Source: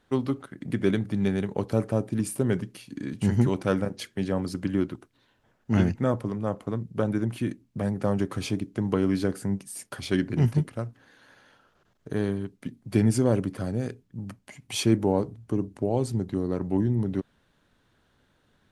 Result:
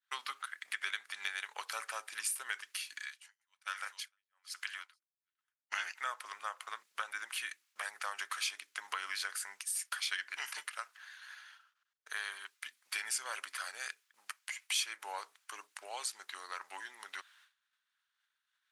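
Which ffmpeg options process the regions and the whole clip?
ffmpeg -i in.wav -filter_complex "[0:a]asettb=1/sr,asplit=3[link_01][link_02][link_03];[link_01]atrim=end=3.004[link_04];[link_02]atrim=start=3:end=5.72,asetpts=PTS-STARTPTS,afade=type=in:duration=0.004:curve=qsin,afade=type=out:start_time=2.716:duration=0.004:curve=qsin,highpass=frequency=1000:poles=1,aecho=1:1:456:0.178,atrim=end_sample=119952,aeval=exprs='val(0)*pow(10,-32*(0.5-0.5*cos(2*PI*1.2*n/s))/20)':channel_layout=same[link_05];[link_03]atrim=start=5.716[link_06];[link_04][link_05]acrossfade=duration=0.004:curve1=hsin:curve2=qsin[link_07];[link_07][link_06]acrossfade=duration=0.004:curve1=qsin:curve2=hsin,agate=range=-33dB:threshold=-53dB:ratio=3:detection=peak,highpass=frequency=1300:width=0.5412,highpass=frequency=1300:width=1.3066,acompressor=threshold=-45dB:ratio=2.5,volume=8.5dB" out.wav

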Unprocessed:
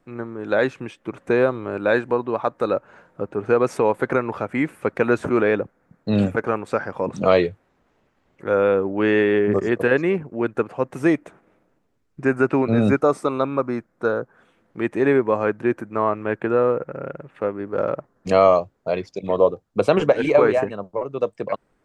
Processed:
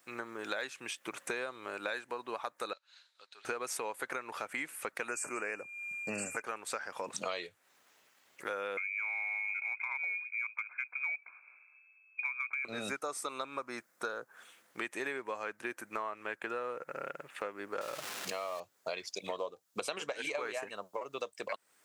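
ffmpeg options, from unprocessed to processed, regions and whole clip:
ffmpeg -i in.wav -filter_complex "[0:a]asettb=1/sr,asplit=3[link_01][link_02][link_03];[link_01]atrim=end=2.734[link_04];[link_02]atrim=start=2.73:end=3.45,asetpts=PTS-STARTPTS,afade=type=in:duration=0.004:curve=qsin,afade=type=out:start_time=0.716:duration=0.004:curve=qsin,bandpass=frequency=4000:width_type=q:width=7.5,acontrast=83[link_05];[link_03]atrim=start=3.446[link_06];[link_04][link_05]acrossfade=duration=0.004:curve1=hsin:curve2=qsin[link_07];[link_07][link_06]acrossfade=duration=0.004:curve1=qsin:curve2=hsin,asettb=1/sr,asplit=3[link_08][link_09][link_10];[link_08]atrim=end=5.084[link_11];[link_09]atrim=start=5.08:end=6.42,asetpts=PTS-STARTPTS,afade=type=in:duration=0.004:curve=qsin,afade=type=out:start_time=1.336:duration=0.004:curve=qsin,equalizer=frequency=7800:width=2.4:gain=14,aeval=exprs='val(0)+0.00708*sin(2*PI*2400*n/s)':channel_layout=same,asuperstop=centerf=3600:order=20:qfactor=2.2[link_12];[link_10]atrim=start=6.416[link_13];[link_11][link_12]acrossfade=duration=0.004:curve1=hsin:curve2=qsin[link_14];[link_14][link_13]acrossfade=duration=0.004:curve1=qsin:curve2=hsin,asettb=1/sr,asplit=3[link_15][link_16][link_17];[link_15]atrim=end=8.774[link_18];[link_16]atrim=start=8.77:end=12.65,asetpts=PTS-STARTPTS,afade=type=in:duration=0.004:curve=qsin,afade=type=out:start_time=3.876:duration=0.004:curve=qsin,lowpass=frequency=2200:width_type=q:width=0.5098,lowpass=frequency=2200:width_type=q:width=0.6013,lowpass=frequency=2200:width_type=q:width=0.9,lowpass=frequency=2200:width_type=q:width=2.563,afreqshift=-2600,asuperstop=centerf=1900:order=4:qfactor=3.1,acompressor=threshold=-22dB:ratio=3:attack=3.2:release=140:knee=1:detection=peak[link_19];[link_17]atrim=start=12.646[link_20];[link_18][link_19]acrossfade=duration=0.004:curve1=hsin:curve2=qsin[link_21];[link_21][link_20]acrossfade=duration=0.004:curve1=qsin:curve2=hsin,asettb=1/sr,asplit=3[link_22][link_23][link_24];[link_22]atrim=end=17.814[link_25];[link_23]atrim=start=17.81:end=18.6,asetpts=PTS-STARTPTS,afade=type=in:duration=0.004:curve=qsin,afade=type=out:start_time=0.786:duration=0.004:curve=qsin,aeval=exprs='val(0)+0.5*0.0398*sgn(val(0))':channel_layout=same,acompressor=threshold=-23dB:ratio=2:attack=3.2:release=140:knee=1:detection=peak,aemphasis=mode=reproduction:type=50kf[link_26];[link_24]atrim=start=18.596[link_27];[link_25][link_26]acrossfade=duration=0.004:curve1=hsin:curve2=qsin[link_28];[link_28][link_27]acrossfade=duration=0.004:curve1=qsin:curve2=hsin,aderivative,acompressor=threshold=-50dB:ratio=6,volume=14.5dB" out.wav

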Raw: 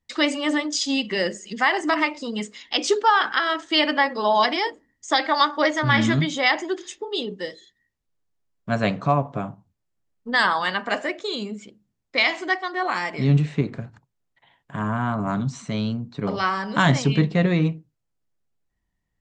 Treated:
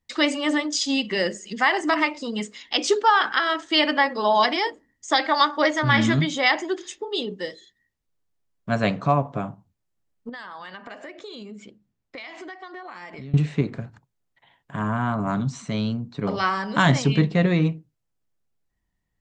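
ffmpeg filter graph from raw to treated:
ffmpeg -i in.wav -filter_complex "[0:a]asettb=1/sr,asplit=3[link_01][link_02][link_03];[link_01]atrim=end=10.294[link_04];[link_02]atrim=start=10.29:end=13.34,asetpts=PTS-STARTPTS,afade=type=in:duration=0.004:curve=qsin,afade=type=out:start_time=3.046:duration=0.004:curve=qsin,highshelf=frequency=7000:gain=-10.5,acompressor=threshold=-35dB:ratio=8:attack=3.2:release=140:knee=1:detection=peak[link_05];[link_03]atrim=start=13.336[link_06];[link_04][link_05]acrossfade=duration=0.004:curve1=hsin:curve2=qsin[link_07];[link_07][link_06]acrossfade=duration=0.004:curve1=qsin:curve2=hsin" out.wav

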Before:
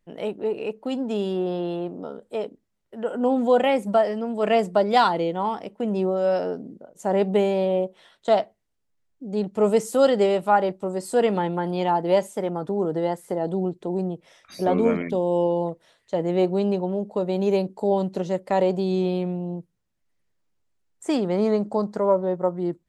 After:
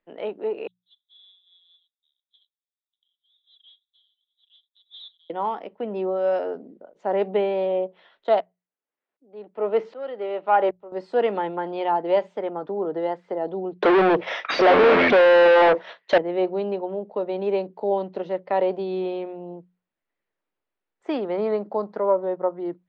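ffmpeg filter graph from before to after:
ffmpeg -i in.wav -filter_complex "[0:a]asettb=1/sr,asplit=3[link_01][link_02][link_03];[link_01]atrim=end=0.674[link_04];[link_02]atrim=start=0.67:end=5.3,asetpts=PTS-STARTPTS,afade=type=in:duration=0.004:curve=qsin,afade=type=out:start_time=4.626:duration=0.004:curve=qsin,asuperpass=centerf=3600:order=8:qfactor=6,acrusher=bits=6:mode=log:mix=0:aa=0.000001[link_05];[link_03]atrim=start=5.296[link_06];[link_04][link_05]acrossfade=duration=0.004:curve1=hsin:curve2=qsin[link_07];[link_07][link_06]acrossfade=duration=0.004:curve1=qsin:curve2=hsin,asettb=1/sr,asplit=3[link_08][link_09][link_10];[link_08]atrim=end=8.404[link_11];[link_09]atrim=start=8.4:end=10.92,asetpts=PTS-STARTPTS,afade=type=in:duration=0.004:curve=qsin,afade=type=out:start_time=2.516:duration=0.004:curve=qsin,acontrast=48,highpass=250,lowpass=3500,aeval=exprs='val(0)*pow(10,-22*if(lt(mod(-1.3*n/s,1),2*abs(-1.3)/1000),1-mod(-1.3*n/s,1)/(2*abs(-1.3)/1000),(mod(-1.3*n/s,1)-2*abs(-1.3)/1000)/(1-2*abs(-1.3)/1000))/20)':channel_layout=same[link_12];[link_10]atrim=start=10.916[link_13];[link_11][link_12]acrossfade=duration=0.004:curve1=hsin:curve2=qsin[link_14];[link_14][link_13]acrossfade=duration=0.004:curve1=qsin:curve2=hsin,asettb=1/sr,asplit=3[link_15][link_16][link_17];[link_15]atrim=end=13.824[link_18];[link_16]atrim=start=13.82:end=16.18,asetpts=PTS-STARTPTS,afade=type=in:duration=0.004:curve=qsin,afade=type=out:start_time=2.356:duration=0.004:curve=qsin,equalizer=frequency=6000:width=3.9:gain=6,agate=range=-33dB:threshold=-49dB:ratio=3:release=100:detection=peak,asplit=2[link_19][link_20];[link_20]highpass=frequency=720:poles=1,volume=42dB,asoftclip=type=tanh:threshold=-7dB[link_21];[link_19][link_21]amix=inputs=2:normalize=0,lowpass=frequency=3100:poles=1,volume=-6dB[link_22];[link_17]atrim=start=16.176[link_23];[link_18][link_22]acrossfade=duration=0.004:curve1=hsin:curve2=qsin[link_24];[link_24][link_23]acrossfade=duration=0.004:curve1=qsin:curve2=hsin,lowpass=frequency=5000:width=0.5412,lowpass=frequency=5000:width=1.3066,acrossover=split=280 3500:gain=0.158 1 0.141[link_25][link_26][link_27];[link_25][link_26][link_27]amix=inputs=3:normalize=0,bandreject=frequency=60:width_type=h:width=6,bandreject=frequency=120:width_type=h:width=6,bandreject=frequency=180:width_type=h:width=6" out.wav

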